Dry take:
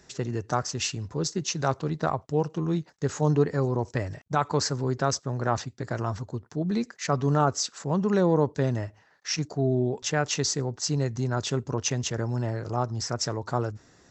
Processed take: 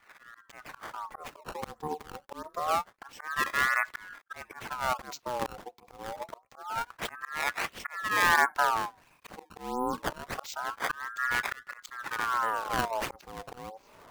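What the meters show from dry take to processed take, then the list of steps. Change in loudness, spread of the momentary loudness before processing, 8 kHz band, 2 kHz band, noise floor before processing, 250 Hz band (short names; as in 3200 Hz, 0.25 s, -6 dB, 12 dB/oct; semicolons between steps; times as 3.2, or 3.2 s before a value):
-3.5 dB, 8 LU, -11.5 dB, +7.5 dB, -60 dBFS, -16.0 dB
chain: opening faded in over 0.90 s; HPF 59 Hz 12 dB/oct; dynamic EQ 1400 Hz, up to -8 dB, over -44 dBFS, Q 1.5; auto swell 0.438 s; upward compressor, threshold -45 dBFS; decimation with a swept rate 18×, swing 160% 1.5 Hz; ring modulator with a swept carrier 1100 Hz, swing 45%, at 0.26 Hz; gain +2.5 dB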